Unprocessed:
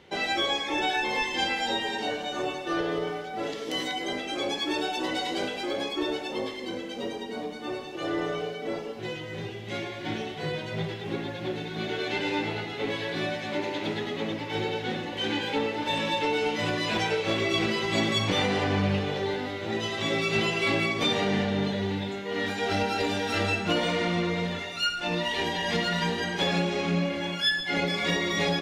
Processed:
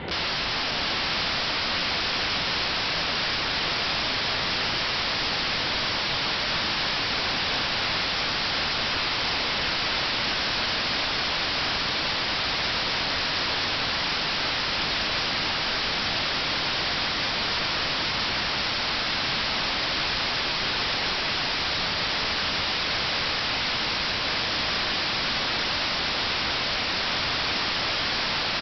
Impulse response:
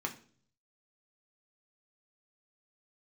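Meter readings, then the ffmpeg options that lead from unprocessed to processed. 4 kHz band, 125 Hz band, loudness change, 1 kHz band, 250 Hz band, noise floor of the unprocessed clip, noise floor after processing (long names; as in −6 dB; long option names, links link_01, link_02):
+7.5 dB, −4.0 dB, +4.0 dB, +2.5 dB, −6.5 dB, −37 dBFS, −27 dBFS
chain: -filter_complex "[0:a]highshelf=frequency=2800:gain=-10.5,apsyclip=30dB,lowpass=4300,aresample=11025,aeval=exprs='(mod(6.31*val(0)+1,2)-1)/6.31':channel_layout=same,aresample=44100,adynamicequalizer=threshold=0.00501:dfrequency=400:dqfactor=2.1:tfrequency=400:tqfactor=2.1:attack=5:release=100:ratio=0.375:range=1.5:mode=cutabove:tftype=bell,asplit=2[link_01][link_02];[link_02]aecho=0:1:714:0.473[link_03];[link_01][link_03]amix=inputs=2:normalize=0,volume=-6dB"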